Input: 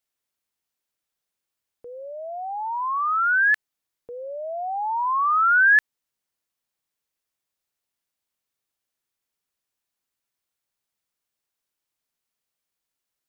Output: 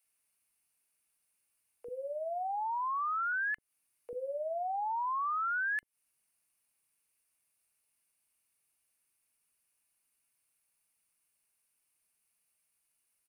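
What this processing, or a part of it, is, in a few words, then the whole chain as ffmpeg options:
serial compression, leveller first: -filter_complex "[0:a]asettb=1/sr,asplit=3[a][b][c];[a]atrim=end=3.324[d];[b]atrim=start=3.32:end=4.11,asetpts=PTS-STARTPTS,afade=t=in:d=0.004:c=qsin,afade=t=out:st=0.786:d=0.004:c=qsin,acrossover=split=2600[e][f];[f]acompressor=threshold=-44dB:ratio=4:attack=1:release=60[g];[e][g]amix=inputs=2:normalize=0[h];[c]atrim=start=4.106[i];[d][h]acrossfade=d=0.004:c1=hsin:c2=qsin[j];[j][i]acrossfade=d=0.004:c1=qsin:c2=hsin,acompressor=threshold=-22dB:ratio=3,acompressor=threshold=-33dB:ratio=5,superequalizer=12b=1.78:13b=0.631:16b=3.98,acrossover=split=450[k][l];[k]adelay=40[m];[m][l]amix=inputs=2:normalize=0"

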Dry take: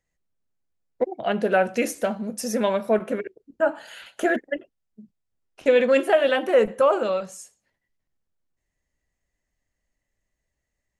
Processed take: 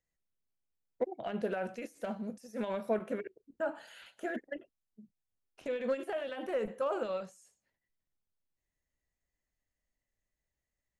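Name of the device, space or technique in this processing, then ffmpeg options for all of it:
de-esser from a sidechain: -filter_complex "[0:a]asplit=2[a][b];[b]highpass=5.5k,apad=whole_len=484786[c];[a][c]sidechaincompress=threshold=-50dB:ratio=8:attack=1.6:release=44,volume=-9dB"

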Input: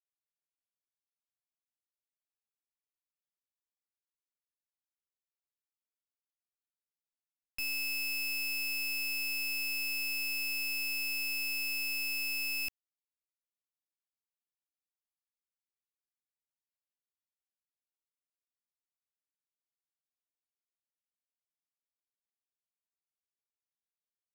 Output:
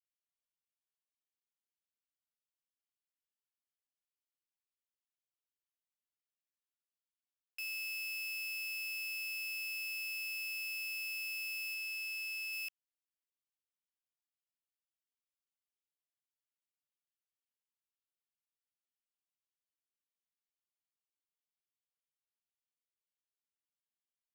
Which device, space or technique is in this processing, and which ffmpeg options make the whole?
headphones lying on a table: -filter_complex "[0:a]highpass=f=1.1k:w=0.5412,highpass=f=1.1k:w=1.3066,equalizer=f=3k:t=o:w=0.38:g=7,asettb=1/sr,asplit=3[a][b][c];[a]atrim=end=11.744[d];[b]atrim=start=11.74:end=12.53,asetpts=PTS-STARTPTS,afade=t=in:d=0.004:c=qsin,afade=t=out:st=0.786:d=0.004:c=qsin,highshelf=f=11k:g=-5[e];[c]atrim=start=12.526[f];[d][e]acrossfade=d=0.004:c1=hsin:c2=qsin[g];[g][f]acrossfade=d=0.004:c1=qsin:c2=hsin,volume=-8dB"

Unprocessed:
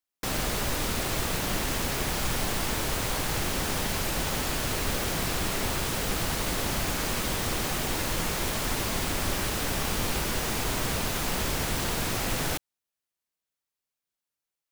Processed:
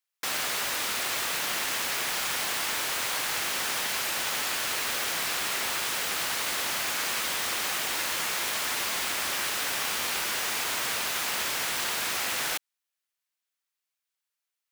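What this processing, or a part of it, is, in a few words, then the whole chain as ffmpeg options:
filter by subtraction: -filter_complex "[0:a]asplit=2[a][b];[b]lowpass=1.8k,volume=-1[c];[a][c]amix=inputs=2:normalize=0,volume=1.5dB"

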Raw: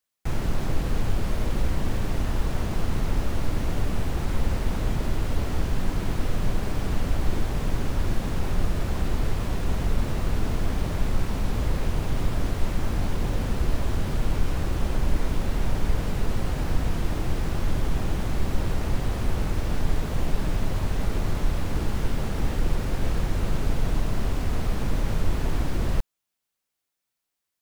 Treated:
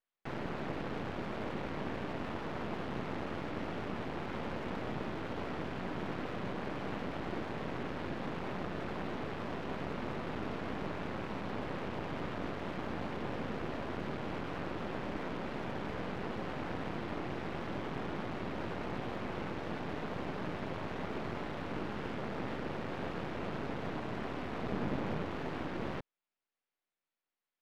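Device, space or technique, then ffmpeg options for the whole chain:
crystal radio: -filter_complex "[0:a]lowpass=5.5k,asettb=1/sr,asplit=3[a][b][c];[a]atrim=end=24.634[d];[b]atrim=start=24.63:end=25.23,asetpts=PTS-STARTPTS,afade=t=in:d=0.004:c=qsin,afade=t=out:st=0.596:d=0.004:c=qsin,equalizer=f=190:t=o:w=2.9:g=5[e];[c]atrim=start=25.226[f];[d][e]acrossfade=d=0.004:c1=hsin:c2=qsin[g];[g][f]acrossfade=d=0.004:c1=qsin:c2=hsin,highpass=210,lowpass=2.8k,aeval=exprs='if(lt(val(0),0),0.251*val(0),val(0))':c=same,volume=-1dB"

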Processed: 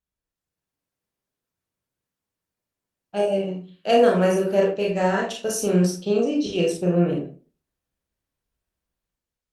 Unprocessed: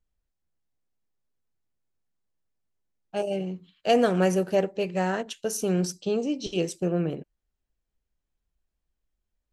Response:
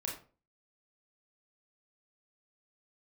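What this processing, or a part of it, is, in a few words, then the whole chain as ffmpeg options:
far-field microphone of a smart speaker: -filter_complex "[1:a]atrim=start_sample=2205[a];[0:a][a]afir=irnorm=-1:irlink=0,highpass=f=110:p=1,dynaudnorm=f=110:g=9:m=8dB,volume=-3dB" -ar 48000 -c:a libopus -b:a 48k

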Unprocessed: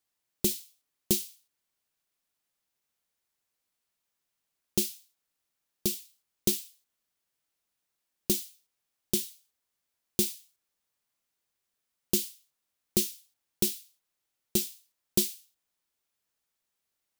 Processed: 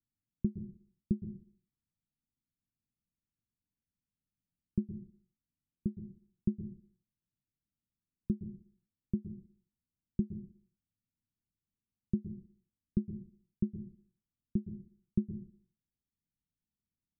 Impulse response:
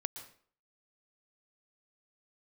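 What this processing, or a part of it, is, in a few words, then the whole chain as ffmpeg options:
club heard from the street: -filter_complex "[0:a]alimiter=limit=-13dB:level=0:latency=1:release=428,lowpass=f=240:w=0.5412,lowpass=f=240:w=1.3066[a];[1:a]atrim=start_sample=2205[b];[a][b]afir=irnorm=-1:irlink=0,volume=7dB"

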